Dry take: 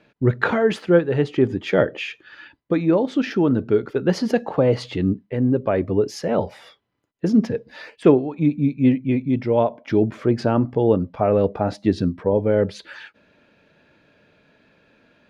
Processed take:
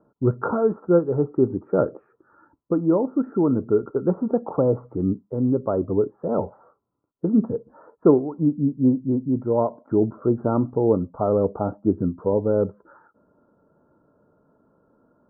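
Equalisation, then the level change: rippled Chebyshev low-pass 1400 Hz, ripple 3 dB; -1.0 dB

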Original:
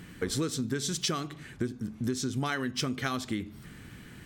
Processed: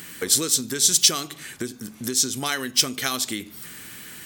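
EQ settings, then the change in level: RIAA curve recording; dynamic EQ 1400 Hz, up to -4 dB, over -45 dBFS, Q 0.97; +7.0 dB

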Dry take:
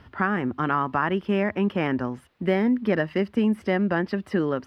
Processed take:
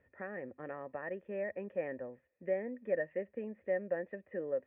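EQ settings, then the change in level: dynamic EQ 670 Hz, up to +6 dB, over -39 dBFS, Q 2.1; vocal tract filter e; -5.0 dB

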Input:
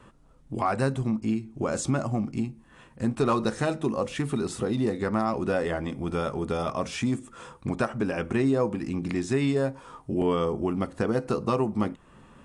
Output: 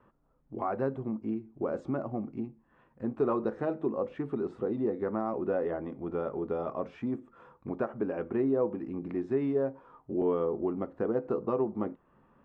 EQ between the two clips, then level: LPF 1400 Hz 12 dB/oct; low shelf 200 Hz -7.5 dB; dynamic EQ 390 Hz, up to +8 dB, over -41 dBFS, Q 0.86; -8.0 dB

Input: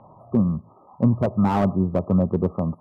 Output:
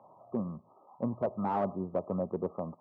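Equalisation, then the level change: band-pass 700 Hz, Q 0.81; -6.5 dB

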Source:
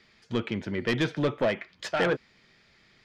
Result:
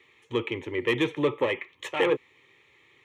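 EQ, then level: HPF 120 Hz 12 dB/oct; fixed phaser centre 1000 Hz, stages 8; +4.5 dB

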